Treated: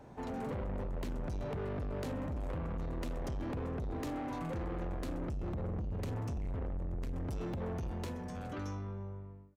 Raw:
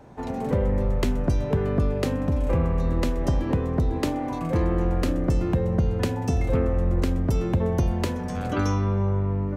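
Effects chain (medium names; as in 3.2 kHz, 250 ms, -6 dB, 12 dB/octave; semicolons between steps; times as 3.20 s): fade out at the end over 2.30 s; 5.30–7.13 s: bass shelf 140 Hz +11 dB; peak limiter -17 dBFS, peak gain reduction 11.5 dB; saturation -29.5 dBFS, distortion -8 dB; trim -5.5 dB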